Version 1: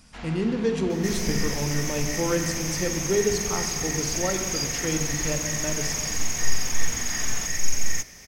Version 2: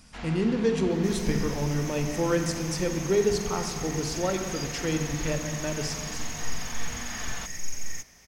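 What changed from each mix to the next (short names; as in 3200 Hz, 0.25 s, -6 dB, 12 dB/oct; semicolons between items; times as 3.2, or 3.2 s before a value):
second sound -9.5 dB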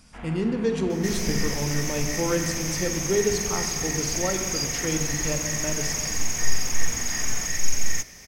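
first sound: add running mean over 9 samples; second sound +10.0 dB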